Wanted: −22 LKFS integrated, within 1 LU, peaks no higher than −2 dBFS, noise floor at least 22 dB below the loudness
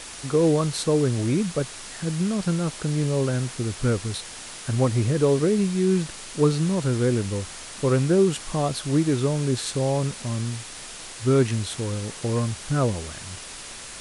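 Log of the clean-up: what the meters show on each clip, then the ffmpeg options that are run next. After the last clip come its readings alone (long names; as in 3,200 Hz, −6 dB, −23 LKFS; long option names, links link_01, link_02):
background noise floor −39 dBFS; target noise floor −46 dBFS; integrated loudness −24.0 LKFS; sample peak −8.5 dBFS; target loudness −22.0 LKFS
→ -af "afftdn=noise_reduction=7:noise_floor=-39"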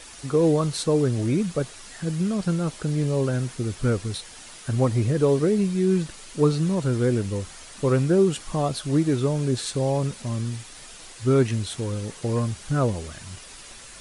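background noise floor −44 dBFS; target noise floor −46 dBFS
→ -af "afftdn=noise_reduction=6:noise_floor=-44"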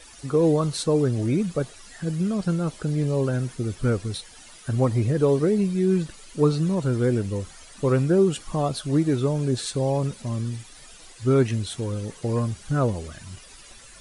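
background noise floor −47 dBFS; integrated loudness −24.5 LKFS; sample peak −8.5 dBFS; target loudness −22.0 LKFS
→ -af "volume=2.5dB"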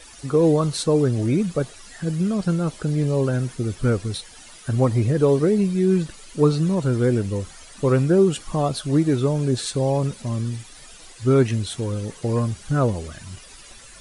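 integrated loudness −22.0 LKFS; sample peak −6.0 dBFS; background noise floor −45 dBFS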